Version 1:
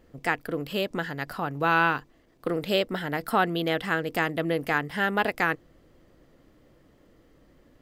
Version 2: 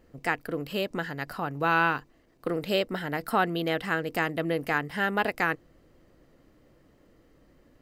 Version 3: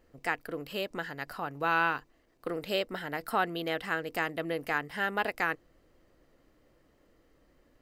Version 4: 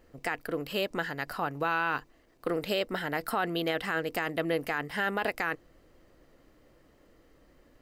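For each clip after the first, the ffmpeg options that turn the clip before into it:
-af "bandreject=f=3400:w=14,volume=0.841"
-af "equalizer=f=150:t=o:w=2.3:g=-6,volume=0.708"
-af "alimiter=limit=0.0708:level=0:latency=1:release=22,volume=1.68"

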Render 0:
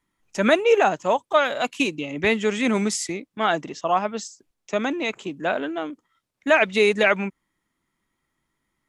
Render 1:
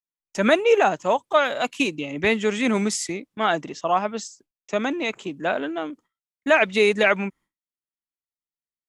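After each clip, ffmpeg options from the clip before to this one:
-af "agate=range=0.0224:threshold=0.00501:ratio=3:detection=peak"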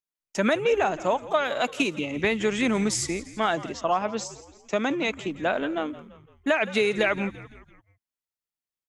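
-filter_complex "[0:a]acompressor=threshold=0.112:ratio=6,asplit=5[s0][s1][s2][s3][s4];[s1]adelay=169,afreqshift=-73,volume=0.15[s5];[s2]adelay=338,afreqshift=-146,volume=0.0733[s6];[s3]adelay=507,afreqshift=-219,volume=0.0359[s7];[s4]adelay=676,afreqshift=-292,volume=0.0176[s8];[s0][s5][s6][s7][s8]amix=inputs=5:normalize=0"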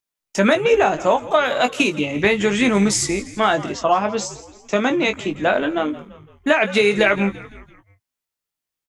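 -filter_complex "[0:a]asplit=2[s0][s1];[s1]adelay=20,volume=0.447[s2];[s0][s2]amix=inputs=2:normalize=0,volume=2.11"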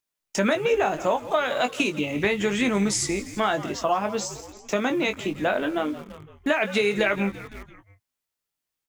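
-filter_complex "[0:a]asplit=2[s0][s1];[s1]acrusher=bits=5:mix=0:aa=0.000001,volume=0.299[s2];[s0][s2]amix=inputs=2:normalize=0,acompressor=threshold=0.0178:ratio=1.5"

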